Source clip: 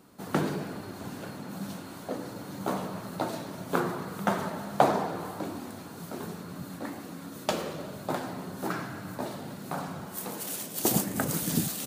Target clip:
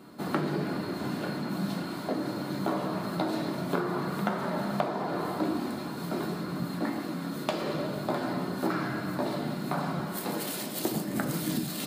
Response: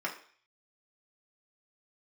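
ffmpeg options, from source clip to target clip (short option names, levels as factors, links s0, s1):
-filter_complex "[0:a]acompressor=threshold=0.0251:ratio=12,asplit=2[s0][s1];[s1]lowpass=f=4400:t=q:w=11[s2];[1:a]atrim=start_sample=2205,lowshelf=f=440:g=12[s3];[s2][s3]afir=irnorm=-1:irlink=0,volume=0.501[s4];[s0][s4]amix=inputs=2:normalize=0"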